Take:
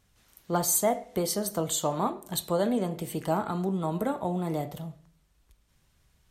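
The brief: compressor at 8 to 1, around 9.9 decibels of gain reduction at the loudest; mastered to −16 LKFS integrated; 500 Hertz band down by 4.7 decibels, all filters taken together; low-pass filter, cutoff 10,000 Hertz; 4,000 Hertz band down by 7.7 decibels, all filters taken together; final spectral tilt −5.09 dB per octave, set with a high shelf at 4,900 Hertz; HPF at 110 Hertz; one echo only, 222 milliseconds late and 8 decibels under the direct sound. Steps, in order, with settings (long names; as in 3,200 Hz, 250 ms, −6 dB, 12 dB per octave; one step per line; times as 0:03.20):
high-pass filter 110 Hz
low-pass filter 10,000 Hz
parametric band 500 Hz −6 dB
parametric band 4,000 Hz −7 dB
high-shelf EQ 4,900 Hz −4.5 dB
downward compressor 8 to 1, threshold −34 dBFS
single-tap delay 222 ms −8 dB
level +22.5 dB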